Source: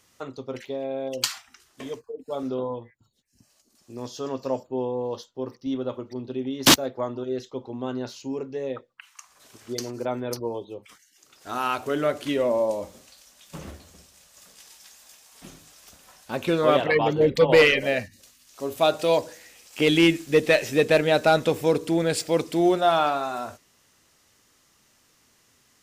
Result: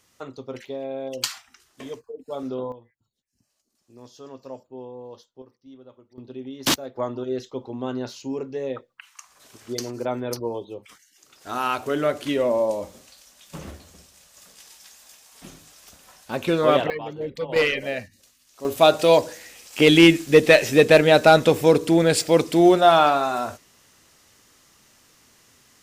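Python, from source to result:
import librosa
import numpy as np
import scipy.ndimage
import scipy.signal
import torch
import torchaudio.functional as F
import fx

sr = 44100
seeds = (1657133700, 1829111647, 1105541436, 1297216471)

y = fx.gain(x, sr, db=fx.steps((0.0, -1.0), (2.72, -10.5), (5.42, -18.0), (6.18, -6.0), (6.96, 1.5), (16.9, -11.0), (17.56, -4.0), (18.65, 5.5)))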